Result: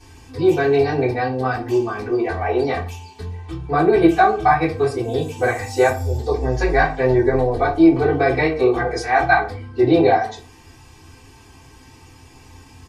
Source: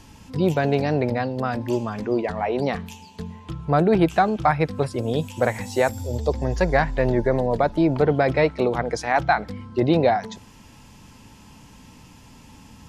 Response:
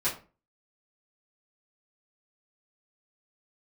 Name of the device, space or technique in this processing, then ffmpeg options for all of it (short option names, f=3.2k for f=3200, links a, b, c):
microphone above a desk: -filter_complex "[0:a]aecho=1:1:2.6:0.87[a];[1:a]atrim=start_sample=2205[b];[a][b]afir=irnorm=-1:irlink=0,volume=-6.5dB"